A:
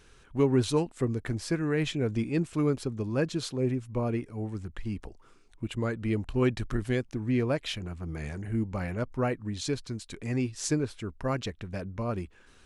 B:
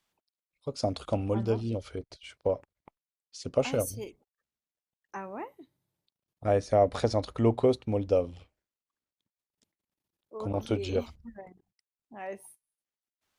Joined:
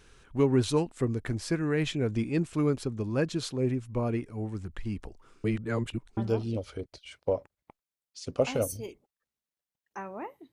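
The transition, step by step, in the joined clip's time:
A
5.44–6.17 reverse
6.17 switch to B from 1.35 s

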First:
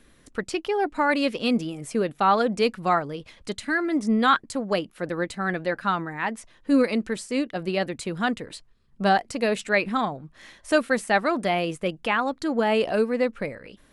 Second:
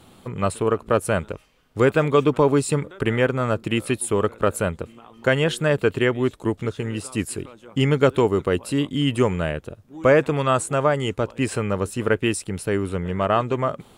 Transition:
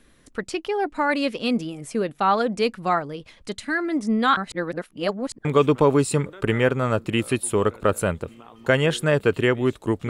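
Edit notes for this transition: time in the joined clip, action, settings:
first
4.37–5.45 reverse
5.45 switch to second from 2.03 s

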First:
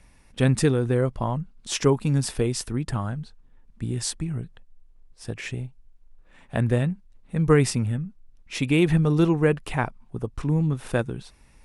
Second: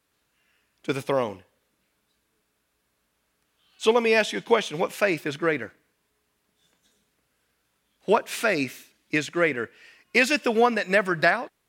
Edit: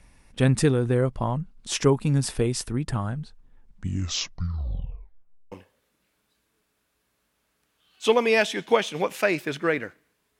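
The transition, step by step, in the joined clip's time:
first
3.53 tape stop 1.99 s
5.52 switch to second from 1.31 s

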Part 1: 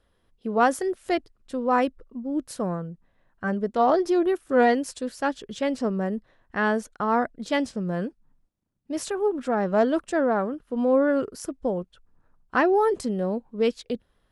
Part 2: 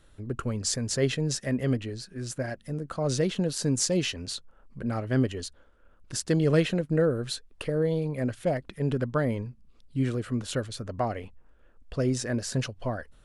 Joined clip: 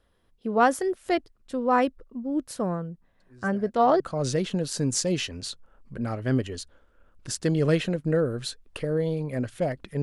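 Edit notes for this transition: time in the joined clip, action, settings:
part 1
3.2 add part 2 from 2.05 s 0.80 s -17 dB
4 switch to part 2 from 2.85 s

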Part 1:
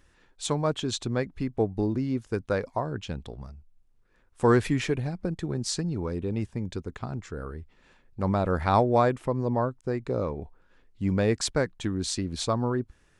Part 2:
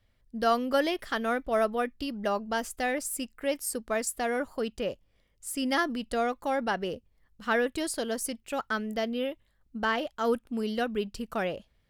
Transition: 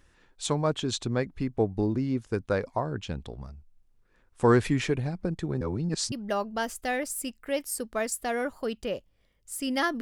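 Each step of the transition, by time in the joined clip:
part 1
5.61–6.12 reverse
6.12 switch to part 2 from 2.07 s

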